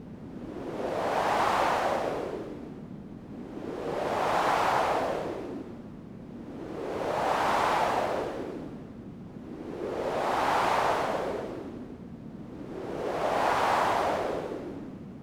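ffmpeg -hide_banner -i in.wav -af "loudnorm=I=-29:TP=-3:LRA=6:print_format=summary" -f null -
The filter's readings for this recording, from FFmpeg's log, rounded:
Input Integrated:    -29.1 LUFS
Input True Peak:     -12.5 dBTP
Input LRA:             0.5 LU
Input Threshold:     -40.4 LUFS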